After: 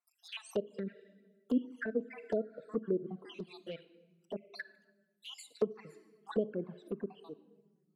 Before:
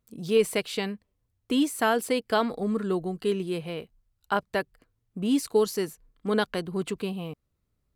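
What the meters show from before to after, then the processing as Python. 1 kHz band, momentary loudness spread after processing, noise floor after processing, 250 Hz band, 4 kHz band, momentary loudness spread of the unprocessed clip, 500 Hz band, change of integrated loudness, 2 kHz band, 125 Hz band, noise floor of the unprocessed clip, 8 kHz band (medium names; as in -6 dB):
-21.5 dB, 16 LU, -77 dBFS, -10.5 dB, -15.5 dB, 13 LU, -10.5 dB, -11.5 dB, -14.5 dB, -12.0 dB, -77 dBFS, -20.5 dB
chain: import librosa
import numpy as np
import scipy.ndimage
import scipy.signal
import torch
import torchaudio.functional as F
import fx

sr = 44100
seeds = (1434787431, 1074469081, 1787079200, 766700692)

y = fx.spec_dropout(x, sr, seeds[0], share_pct=71)
y = scipy.signal.sosfilt(scipy.signal.butter(4, 190.0, 'highpass', fs=sr, output='sos'), y)
y = fx.room_shoebox(y, sr, seeds[1], volume_m3=1000.0, walls='mixed', distance_m=0.34)
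y = fx.env_lowpass_down(y, sr, base_hz=630.0, full_db=-26.5)
y = fx.env_flanger(y, sr, rest_ms=5.7, full_db=-25.5)
y = y * librosa.db_to_amplitude(-2.0)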